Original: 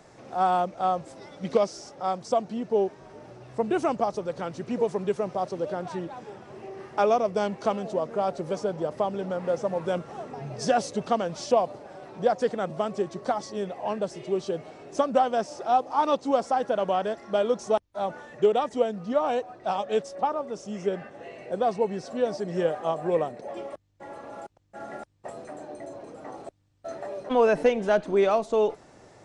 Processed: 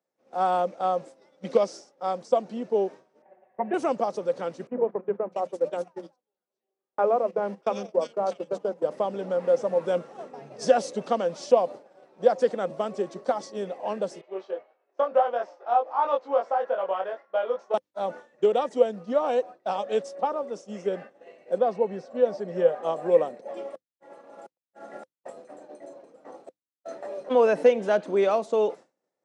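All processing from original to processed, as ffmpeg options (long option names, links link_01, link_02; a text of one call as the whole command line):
ffmpeg -i in.wav -filter_complex "[0:a]asettb=1/sr,asplit=3[link_01][link_02][link_03];[link_01]atrim=end=3.224[link_04];[link_02]atrim=start=3.22:end=3.74,asetpts=PTS-STARTPTS,afade=type=in:duration=0.004:curve=qsin,afade=type=out:start_time=0.516:duration=0.004:curve=qsin,highpass=270,equalizer=frequency=310:width_type=q:width=4:gain=-8,equalizer=frequency=450:width_type=q:width=4:gain=-6,equalizer=frequency=720:width_type=q:width=4:gain=8,equalizer=frequency=1300:width_type=q:width=4:gain=-10,equalizer=frequency=1800:width_type=q:width=4:gain=7,lowpass=frequency=2100:width=0.5412,lowpass=frequency=2100:width=1.3066,aecho=1:1:5.3:0.87,atrim=end_sample=22932[link_05];[link_03]atrim=start=3.736[link_06];[link_04][link_05]acrossfade=duration=0.004:curve1=hsin:curve2=qsin[link_07];[link_07][link_06]acrossfade=duration=0.004:curve1=qsin:curve2=hsin,asettb=1/sr,asplit=3[link_08][link_09][link_10];[link_08]atrim=end=4.674[link_11];[link_09]atrim=start=4.67:end=8.83,asetpts=PTS-STARTPTS,afade=type=in:duration=0.004:curve=qsin,afade=type=out:start_time=4.156:duration=0.004:curve=qsin,acrossover=split=200|1900[link_12][link_13][link_14];[link_12]adelay=40[link_15];[link_14]adelay=650[link_16];[link_15][link_13][link_16]amix=inputs=3:normalize=0,atrim=end_sample=183456,agate=range=-13dB:threshold=-34dB:ratio=16:release=100:detection=peak[link_17];[link_10]atrim=start=8.826[link_18];[link_11][link_17]acrossfade=duration=0.004:curve1=hsin:curve2=qsin[link_19];[link_19][link_18]acrossfade=duration=0.004:curve1=qsin:curve2=hsin,asettb=1/sr,asplit=3[link_20][link_21][link_22];[link_20]atrim=end=14.214[link_23];[link_21]atrim=start=14.21:end=17.74,asetpts=PTS-STARTPTS,afade=type=in:duration=0.004:curve=qsin,afade=type=out:start_time=3.526:duration=0.004:curve=qsin,highpass=670,lowpass=2000,asplit=2[link_24][link_25];[link_25]adelay=21,volume=-2.5dB[link_26];[link_24][link_26]amix=inputs=2:normalize=0,atrim=end_sample=155673[link_27];[link_22]atrim=start=17.736[link_28];[link_23][link_27]acrossfade=duration=0.004:curve1=hsin:curve2=qsin[link_29];[link_29][link_28]acrossfade=duration=0.004:curve1=qsin:curve2=hsin,asettb=1/sr,asplit=3[link_30][link_31][link_32];[link_30]atrim=end=21.584[link_33];[link_31]atrim=start=21.58:end=22.83,asetpts=PTS-STARTPTS,afade=type=in:duration=0.004:curve=qsin,afade=type=out:start_time=1.246:duration=0.004:curve=qsin,lowpass=frequency=2300:poles=1,bandreject=frequency=310:width=5[link_34];[link_32]atrim=start=22.826[link_35];[link_33][link_34]acrossfade=duration=0.004:curve1=hsin:curve2=qsin[link_36];[link_36][link_35]acrossfade=duration=0.004:curve1=qsin:curve2=hsin,highpass=frequency=180:width=0.5412,highpass=frequency=180:width=1.3066,agate=range=-33dB:threshold=-34dB:ratio=3:detection=peak,equalizer=frequency=520:width=7.1:gain=8.5,volume=-1.5dB" out.wav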